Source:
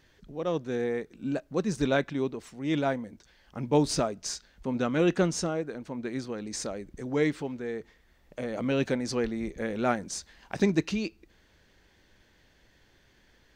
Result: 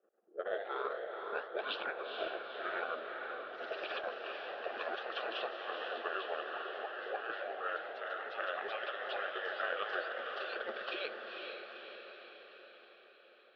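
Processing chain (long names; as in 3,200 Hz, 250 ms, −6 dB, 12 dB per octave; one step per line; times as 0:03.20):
pitch glide at a constant tempo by −10.5 semitones ending unshifted
gate on every frequency bin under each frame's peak −15 dB weak
low-pass filter 2,900 Hz 24 dB per octave
low-pass that shuts in the quiet parts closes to 360 Hz, open at −40 dBFS
Butterworth high-pass 260 Hz 48 dB per octave
compressor whose output falls as the input rises −44 dBFS, ratio −0.5
phaser with its sweep stopped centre 1,400 Hz, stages 8
gate pattern "x.xxxxxxxx..x" 170 BPM
feedback delay with all-pass diffusion 480 ms, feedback 59%, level −4.5 dB
delay with pitch and tempo change per echo 101 ms, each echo +1 semitone, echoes 3, each echo −6 dB
level +9.5 dB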